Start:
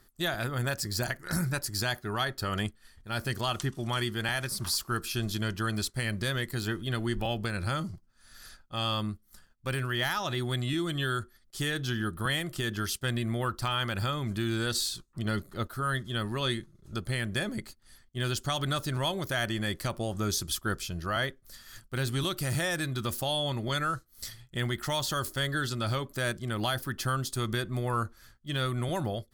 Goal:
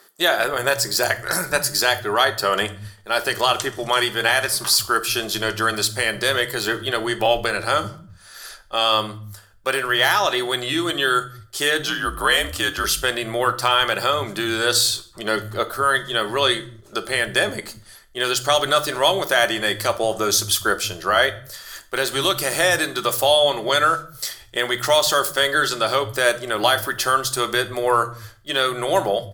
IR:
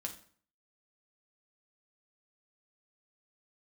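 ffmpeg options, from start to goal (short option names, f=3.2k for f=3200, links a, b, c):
-filter_complex "[0:a]asettb=1/sr,asplit=3[a][b][c];[a]atrim=end=11.864[d];[b]atrim=start=11.86:end=12.84,asetpts=PTS-STARTPTS,afade=t=in:d=0.004:c=qsin,afade=t=out:st=0.976:d=0.004:c=qsin,afreqshift=-60[e];[c]atrim=start=12.836[f];[d][e]acrossfade=d=0.004:c1=hsin:c2=qsin[g];[g][f]acrossfade=d=0.004:c1=qsin:c2=hsin,lowshelf=f=320:t=q:w=1.5:g=-11.5,acrossover=split=150[h][i];[h]adelay=190[j];[j][i]amix=inputs=2:normalize=0,asplit=2[k][l];[1:a]atrim=start_sample=2205[m];[l][m]afir=irnorm=-1:irlink=0,volume=2dB[n];[k][n]amix=inputs=2:normalize=0,volume=7dB"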